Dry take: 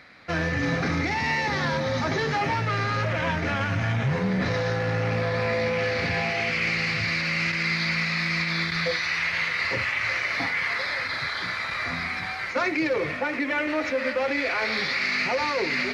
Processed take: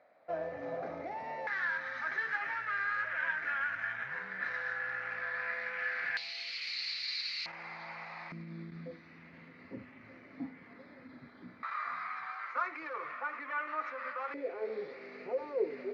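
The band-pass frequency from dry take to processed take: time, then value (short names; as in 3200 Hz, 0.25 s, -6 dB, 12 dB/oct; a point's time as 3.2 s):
band-pass, Q 5.2
630 Hz
from 1.47 s 1600 Hz
from 6.17 s 4200 Hz
from 7.46 s 830 Hz
from 8.32 s 250 Hz
from 11.63 s 1200 Hz
from 14.34 s 440 Hz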